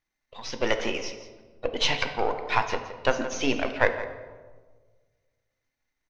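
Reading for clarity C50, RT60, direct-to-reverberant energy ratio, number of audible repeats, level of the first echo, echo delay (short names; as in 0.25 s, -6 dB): 8.5 dB, 1.4 s, 6.5 dB, 1, -14.0 dB, 0.169 s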